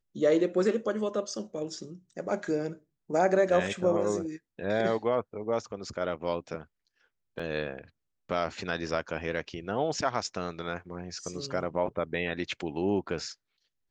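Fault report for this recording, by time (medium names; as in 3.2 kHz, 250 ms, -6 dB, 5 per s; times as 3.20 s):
7.39 s: dropout 4.7 ms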